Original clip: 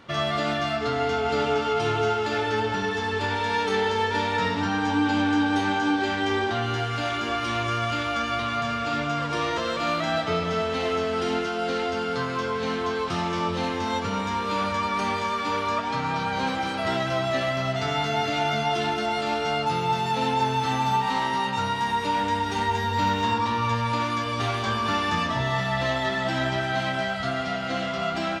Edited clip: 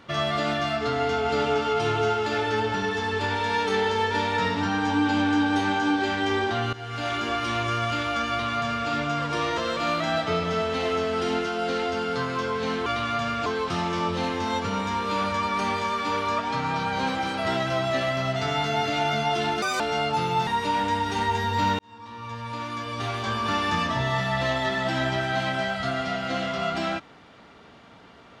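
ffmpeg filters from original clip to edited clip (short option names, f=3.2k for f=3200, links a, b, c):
-filter_complex "[0:a]asplit=8[a][b][c][d][e][f][g][h];[a]atrim=end=6.73,asetpts=PTS-STARTPTS,afade=t=out:st=6.726:d=0.004:c=hsin:silence=0.141254[i];[b]atrim=start=6.73:end=12.862,asetpts=PTS-STARTPTS,afade=t=in:d=0.39:silence=0.141254[j];[c]atrim=start=8.288:end=8.892[k];[d]atrim=start=12.858:end=19.024[l];[e]atrim=start=19.02:end=19.33,asetpts=PTS-STARTPTS,asetrate=75852,aresample=44100,atrim=end_sample=7948,asetpts=PTS-STARTPTS[m];[f]atrim=start=19.326:end=20.002[n];[g]atrim=start=21.868:end=23.19,asetpts=PTS-STARTPTS,afade=t=out:st=1.318:d=0.004:c=hsin[o];[h]atrim=start=23.19,asetpts=PTS-STARTPTS,afade=t=in:d=1.87[p];[i][j]concat=n=2:v=0:a=1[q];[q][k]acrossfade=d=0.004:c1=hsin:c2=hsin[r];[r][l]acrossfade=d=0.004:c1=hsin:c2=hsin[s];[s][m]acrossfade=d=0.004:c1=hsin:c2=hsin[t];[t][n]acrossfade=d=0.004:c1=hsin:c2=hsin[u];[o][p]concat=n=2:v=0:a=1[v];[u][v]acrossfade=d=0.004:c1=hsin:c2=hsin"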